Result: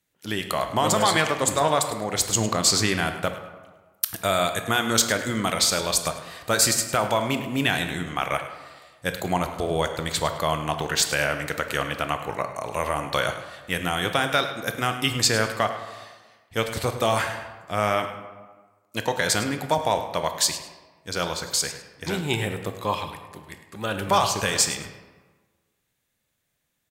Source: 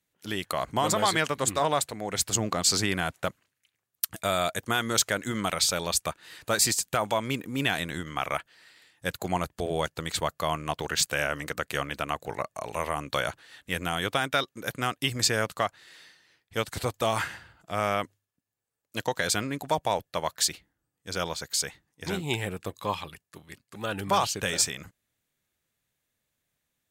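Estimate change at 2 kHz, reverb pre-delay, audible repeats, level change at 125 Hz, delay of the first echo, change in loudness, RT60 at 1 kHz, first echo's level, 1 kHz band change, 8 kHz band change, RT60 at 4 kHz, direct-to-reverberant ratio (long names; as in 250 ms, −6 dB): +4.5 dB, 16 ms, 1, +4.5 dB, 104 ms, +4.0 dB, 1.3 s, −14.0 dB, +4.5 dB, +4.0 dB, 0.80 s, 6.5 dB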